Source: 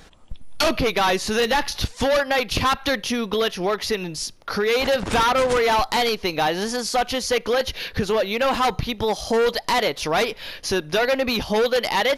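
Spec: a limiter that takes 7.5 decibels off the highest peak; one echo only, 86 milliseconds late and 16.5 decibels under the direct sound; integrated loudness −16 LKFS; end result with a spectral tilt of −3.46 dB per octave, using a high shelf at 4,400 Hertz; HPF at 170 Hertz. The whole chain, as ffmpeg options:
ffmpeg -i in.wav -af "highpass=170,highshelf=frequency=4400:gain=-8,alimiter=limit=-18dB:level=0:latency=1,aecho=1:1:86:0.15,volume=10dB" out.wav

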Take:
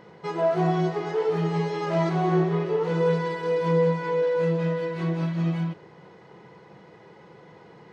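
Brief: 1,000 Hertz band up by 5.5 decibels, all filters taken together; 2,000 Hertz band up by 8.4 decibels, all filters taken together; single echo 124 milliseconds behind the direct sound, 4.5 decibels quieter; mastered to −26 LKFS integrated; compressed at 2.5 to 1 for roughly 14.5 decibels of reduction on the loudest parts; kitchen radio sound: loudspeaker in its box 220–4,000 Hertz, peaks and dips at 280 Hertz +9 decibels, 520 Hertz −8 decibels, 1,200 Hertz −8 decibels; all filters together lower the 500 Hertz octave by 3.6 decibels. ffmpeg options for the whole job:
ffmpeg -i in.wav -af "equalizer=frequency=500:width_type=o:gain=-3,equalizer=frequency=1000:width_type=o:gain=9,equalizer=frequency=2000:width_type=o:gain=8.5,acompressor=threshold=-39dB:ratio=2.5,highpass=220,equalizer=frequency=280:width_type=q:width=4:gain=9,equalizer=frequency=520:width_type=q:width=4:gain=-8,equalizer=frequency=1200:width_type=q:width=4:gain=-8,lowpass=frequency=4000:width=0.5412,lowpass=frequency=4000:width=1.3066,aecho=1:1:124:0.596,volume=12.5dB" out.wav

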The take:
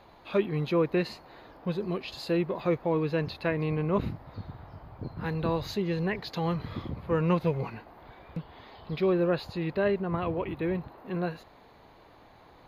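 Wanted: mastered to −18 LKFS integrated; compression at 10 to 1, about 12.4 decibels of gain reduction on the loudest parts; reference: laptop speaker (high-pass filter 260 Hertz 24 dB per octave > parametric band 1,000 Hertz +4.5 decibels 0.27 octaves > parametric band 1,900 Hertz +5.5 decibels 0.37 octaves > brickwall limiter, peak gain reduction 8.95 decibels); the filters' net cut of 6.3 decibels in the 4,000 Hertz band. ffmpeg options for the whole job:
ffmpeg -i in.wav -af "equalizer=frequency=4000:width_type=o:gain=-8,acompressor=threshold=-34dB:ratio=10,highpass=frequency=260:width=0.5412,highpass=frequency=260:width=1.3066,equalizer=frequency=1000:width_type=o:width=0.27:gain=4.5,equalizer=frequency=1900:width_type=o:width=0.37:gain=5.5,volume=26.5dB,alimiter=limit=-7dB:level=0:latency=1" out.wav

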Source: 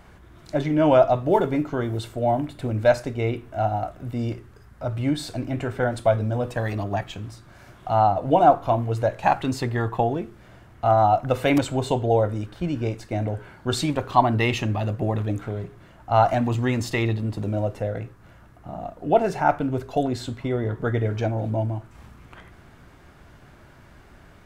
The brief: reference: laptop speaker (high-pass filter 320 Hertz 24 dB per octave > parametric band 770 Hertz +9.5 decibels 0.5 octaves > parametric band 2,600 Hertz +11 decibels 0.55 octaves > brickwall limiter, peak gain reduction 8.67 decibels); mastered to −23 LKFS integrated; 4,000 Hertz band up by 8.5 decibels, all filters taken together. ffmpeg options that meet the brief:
ffmpeg -i in.wav -af "highpass=frequency=320:width=0.5412,highpass=frequency=320:width=1.3066,equalizer=frequency=770:width_type=o:width=0.5:gain=9.5,equalizer=frequency=2600:width_type=o:width=0.55:gain=11,equalizer=frequency=4000:width_type=o:gain=5,volume=-2dB,alimiter=limit=-8dB:level=0:latency=1" out.wav

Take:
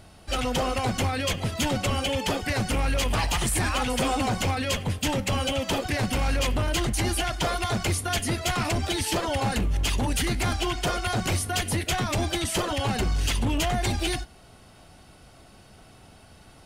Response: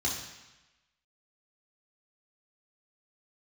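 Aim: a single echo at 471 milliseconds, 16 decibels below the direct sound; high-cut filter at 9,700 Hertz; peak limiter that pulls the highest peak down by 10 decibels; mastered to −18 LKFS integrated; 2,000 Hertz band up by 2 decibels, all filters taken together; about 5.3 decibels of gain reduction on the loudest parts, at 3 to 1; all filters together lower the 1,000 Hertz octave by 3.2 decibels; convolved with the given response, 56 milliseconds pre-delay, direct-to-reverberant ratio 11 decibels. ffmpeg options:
-filter_complex "[0:a]lowpass=9700,equalizer=frequency=1000:width_type=o:gain=-5.5,equalizer=frequency=2000:width_type=o:gain=4,acompressor=threshold=-29dB:ratio=3,alimiter=level_in=6.5dB:limit=-24dB:level=0:latency=1,volume=-6.5dB,aecho=1:1:471:0.158,asplit=2[link_01][link_02];[1:a]atrim=start_sample=2205,adelay=56[link_03];[link_02][link_03]afir=irnorm=-1:irlink=0,volume=-17.5dB[link_04];[link_01][link_04]amix=inputs=2:normalize=0,volume=18.5dB"

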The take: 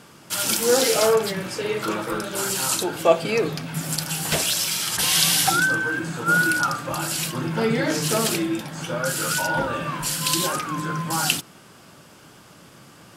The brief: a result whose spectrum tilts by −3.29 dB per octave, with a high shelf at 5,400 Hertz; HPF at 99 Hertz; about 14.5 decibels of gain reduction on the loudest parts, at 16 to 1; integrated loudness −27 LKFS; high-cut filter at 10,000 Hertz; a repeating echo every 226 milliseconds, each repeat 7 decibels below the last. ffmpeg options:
ffmpeg -i in.wav -af "highpass=99,lowpass=10000,highshelf=frequency=5400:gain=-7.5,acompressor=threshold=-25dB:ratio=16,aecho=1:1:226|452|678|904|1130:0.447|0.201|0.0905|0.0407|0.0183,volume=1dB" out.wav

